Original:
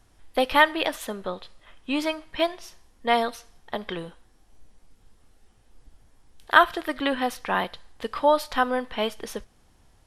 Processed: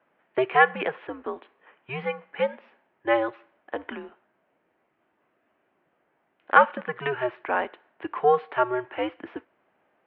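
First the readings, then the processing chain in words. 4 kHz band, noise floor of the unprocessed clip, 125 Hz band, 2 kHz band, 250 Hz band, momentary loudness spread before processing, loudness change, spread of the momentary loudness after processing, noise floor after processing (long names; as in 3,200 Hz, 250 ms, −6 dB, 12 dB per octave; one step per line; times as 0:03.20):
−11.5 dB, −60 dBFS, +2.0 dB, −1.5 dB, −5.0 dB, 18 LU, −0.5 dB, 18 LU, −72 dBFS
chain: harmonic generator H 2 −22 dB, 6 −43 dB, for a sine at −1.5 dBFS
single-sideband voice off tune −130 Hz 400–2,600 Hz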